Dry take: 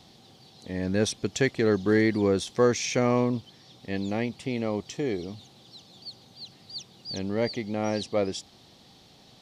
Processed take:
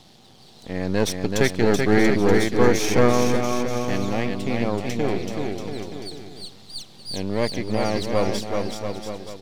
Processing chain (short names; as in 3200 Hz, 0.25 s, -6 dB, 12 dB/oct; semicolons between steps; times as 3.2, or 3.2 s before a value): half-wave gain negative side -12 dB; bouncing-ball echo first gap 0.38 s, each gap 0.8×, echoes 5; gain +6 dB